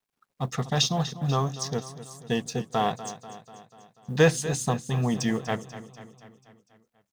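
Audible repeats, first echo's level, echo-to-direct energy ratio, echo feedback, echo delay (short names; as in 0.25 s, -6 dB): 5, -14.0 dB, -12.0 dB, 58%, 0.244 s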